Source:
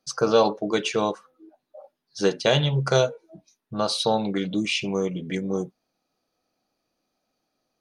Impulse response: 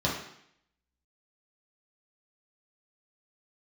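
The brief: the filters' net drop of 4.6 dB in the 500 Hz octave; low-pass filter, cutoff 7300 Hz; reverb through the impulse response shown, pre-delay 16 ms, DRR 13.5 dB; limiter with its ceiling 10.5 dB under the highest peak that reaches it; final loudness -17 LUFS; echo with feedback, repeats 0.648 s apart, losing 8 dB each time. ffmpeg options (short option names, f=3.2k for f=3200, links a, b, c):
-filter_complex "[0:a]lowpass=7.3k,equalizer=f=500:t=o:g=-5.5,alimiter=limit=-16.5dB:level=0:latency=1,aecho=1:1:648|1296|1944|2592|3240:0.398|0.159|0.0637|0.0255|0.0102,asplit=2[a][b];[1:a]atrim=start_sample=2205,adelay=16[c];[b][c]afir=irnorm=-1:irlink=0,volume=-24dB[d];[a][d]amix=inputs=2:normalize=0,volume=11dB"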